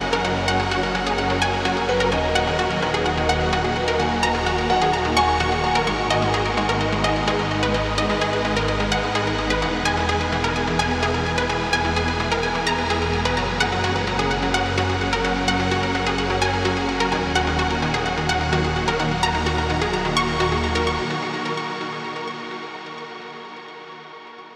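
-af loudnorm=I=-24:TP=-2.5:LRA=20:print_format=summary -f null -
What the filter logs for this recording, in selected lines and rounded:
Input Integrated:    -21.2 LUFS
Input True Peak:      -5.2 dBTP
Input LRA:            11.7 LU
Input Threshold:     -31.8 LUFS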